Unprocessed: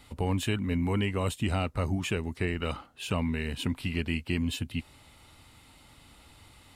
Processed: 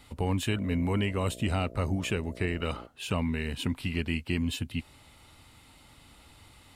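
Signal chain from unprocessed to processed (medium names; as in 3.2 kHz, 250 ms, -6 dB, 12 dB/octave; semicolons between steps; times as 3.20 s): 0.48–2.86 s: mains buzz 60 Hz, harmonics 11, -47 dBFS 0 dB/octave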